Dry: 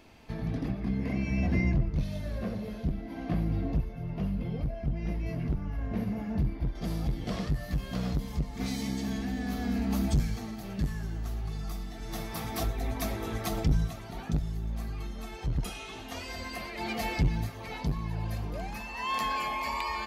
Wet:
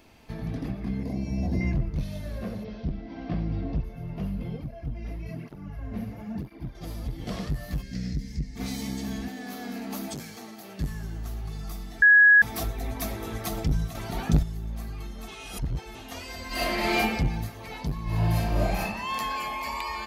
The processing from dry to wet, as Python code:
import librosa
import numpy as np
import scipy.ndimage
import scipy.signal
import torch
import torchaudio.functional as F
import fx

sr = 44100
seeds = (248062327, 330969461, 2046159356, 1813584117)

y = fx.band_shelf(x, sr, hz=1900.0, db=-11.5, octaves=1.7, at=(1.03, 1.61))
y = fx.cheby1_lowpass(y, sr, hz=5700.0, order=5, at=(2.63, 3.83), fade=0.02)
y = fx.flanger_cancel(y, sr, hz=1.0, depth_ms=6.9, at=(4.56, 7.18), fade=0.02)
y = fx.curve_eq(y, sr, hz=(270.0, 1100.0, 1900.0, 3200.0, 5200.0, 14000.0), db=(0, -24, 2, -10, 4, -17), at=(7.81, 8.55), fade=0.02)
y = fx.highpass(y, sr, hz=290.0, slope=12, at=(9.28, 10.8))
y = fx.reverb_throw(y, sr, start_s=16.47, length_s=0.5, rt60_s=1.0, drr_db=-11.0)
y = fx.reverb_throw(y, sr, start_s=18.04, length_s=0.77, rt60_s=0.95, drr_db=-9.5)
y = fx.edit(y, sr, fx.bleep(start_s=12.02, length_s=0.4, hz=1670.0, db=-12.0),
    fx.clip_gain(start_s=13.95, length_s=0.48, db=8.0),
    fx.reverse_span(start_s=15.28, length_s=0.67), tone=tone)
y = fx.high_shelf(y, sr, hz=9000.0, db=7.0)